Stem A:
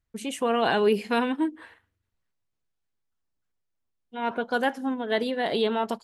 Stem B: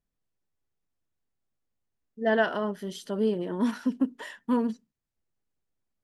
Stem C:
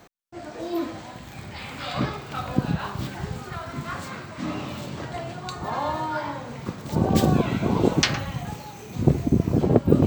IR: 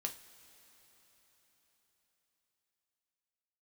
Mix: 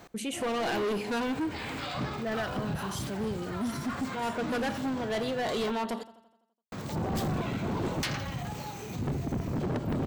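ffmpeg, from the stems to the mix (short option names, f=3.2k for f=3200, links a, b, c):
-filter_complex "[0:a]volume=0.5dB,asplit=3[a][b][c];[b]volume=-3dB[d];[c]volume=-20dB[e];[1:a]bass=f=250:g=5,treble=f=4k:g=14,volume=-1.5dB[f];[2:a]volume=0dB,asplit=3[g][h][i];[g]atrim=end=5.71,asetpts=PTS-STARTPTS,afade=t=out:st=5.706:d=0.004:c=hsin[j];[h]atrim=start=5.71:end=6.72,asetpts=PTS-STARTPTS,volume=0[k];[i]atrim=start=6.72,asetpts=PTS-STARTPTS,afade=t=in:d=0.004:c=hsin[l];[j][k][l]concat=n=3:v=0:a=1,asplit=2[m][n];[n]volume=-19dB[o];[3:a]atrim=start_sample=2205[p];[d][p]afir=irnorm=-1:irlink=0[q];[e][o]amix=inputs=2:normalize=0,aecho=0:1:84|168|252|336|420|504|588|672:1|0.55|0.303|0.166|0.0915|0.0503|0.0277|0.0152[r];[a][f][m][q][r]amix=inputs=5:normalize=0,volume=21.5dB,asoftclip=hard,volume=-21.5dB,alimiter=level_in=3.5dB:limit=-24dB:level=0:latency=1:release=41,volume=-3.5dB"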